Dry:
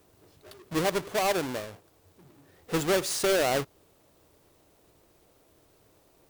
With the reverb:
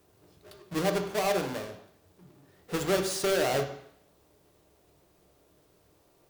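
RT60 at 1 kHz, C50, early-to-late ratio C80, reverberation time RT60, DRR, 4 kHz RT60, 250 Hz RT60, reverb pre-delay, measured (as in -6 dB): 0.70 s, 8.5 dB, 11.0 dB, 0.70 s, 4.5 dB, 0.70 s, 0.80 s, 3 ms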